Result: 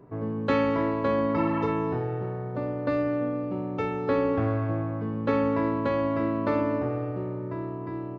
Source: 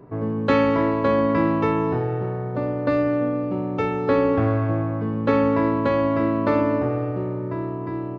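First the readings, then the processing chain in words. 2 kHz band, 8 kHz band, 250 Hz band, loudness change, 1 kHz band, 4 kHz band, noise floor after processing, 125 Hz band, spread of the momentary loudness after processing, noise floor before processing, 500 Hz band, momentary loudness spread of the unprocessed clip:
−5.5 dB, can't be measured, −5.5 dB, −5.5 dB, −5.5 dB, −5.5 dB, −34 dBFS, −5.5 dB, 8 LU, −29 dBFS, −5.5 dB, 8 LU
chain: healed spectral selection 0:01.38–0:01.65, 660–3,400 Hz after
level −5.5 dB

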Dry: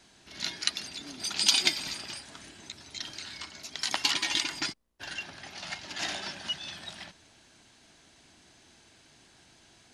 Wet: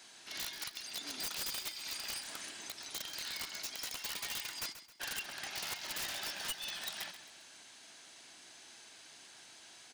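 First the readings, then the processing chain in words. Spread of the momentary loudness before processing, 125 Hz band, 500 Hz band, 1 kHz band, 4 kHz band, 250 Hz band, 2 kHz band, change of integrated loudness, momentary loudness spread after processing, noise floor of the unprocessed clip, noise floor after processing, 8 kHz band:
19 LU, −9.5 dB, −6.5 dB, −7.5 dB, −10.0 dB, −11.5 dB, −7.5 dB, −9.0 dB, 16 LU, −60 dBFS, −57 dBFS, −6.5 dB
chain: high-pass filter 790 Hz 6 dB per octave
high-shelf EQ 10,000 Hz +6.5 dB
downward compressor 6 to 1, threshold −40 dBFS, peak gain reduction 21.5 dB
wrap-around overflow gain 35.5 dB
repeating echo 133 ms, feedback 39%, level −12.5 dB
level +3.5 dB

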